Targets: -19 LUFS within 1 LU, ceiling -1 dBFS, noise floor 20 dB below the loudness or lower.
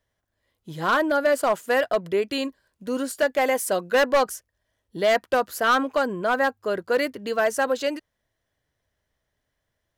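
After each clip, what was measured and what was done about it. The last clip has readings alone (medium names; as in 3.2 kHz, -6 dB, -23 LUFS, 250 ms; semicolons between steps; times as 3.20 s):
clipped samples 1.1%; clipping level -14.5 dBFS; loudness -23.5 LUFS; peak level -14.5 dBFS; loudness target -19.0 LUFS
-> clip repair -14.5 dBFS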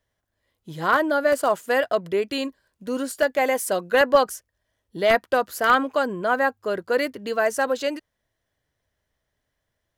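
clipped samples 0.0%; loudness -22.5 LUFS; peak level -5.5 dBFS; loudness target -19.0 LUFS
-> trim +3.5 dB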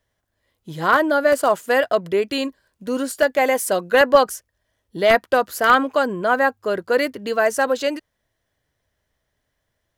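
loudness -19.0 LUFS; peak level -2.0 dBFS; noise floor -76 dBFS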